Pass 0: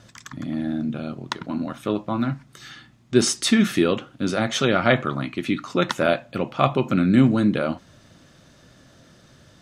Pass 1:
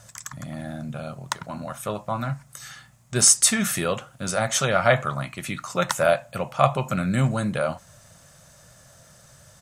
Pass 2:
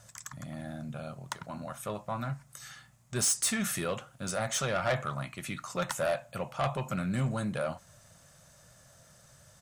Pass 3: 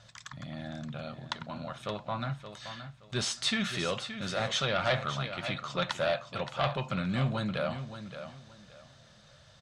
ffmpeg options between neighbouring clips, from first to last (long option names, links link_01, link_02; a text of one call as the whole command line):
ffmpeg -i in.wav -af "firequalizer=gain_entry='entry(150,0);entry(290,-17);entry(570,2);entry(3500,-4);entry(7800,13)':delay=0.05:min_phase=1" out.wav
ffmpeg -i in.wav -af "asoftclip=type=tanh:threshold=-16.5dB,volume=-6.5dB" out.wav
ffmpeg -i in.wav -af "lowpass=frequency=3800:width_type=q:width=2.7,aecho=1:1:572|1144|1716:0.299|0.0746|0.0187" out.wav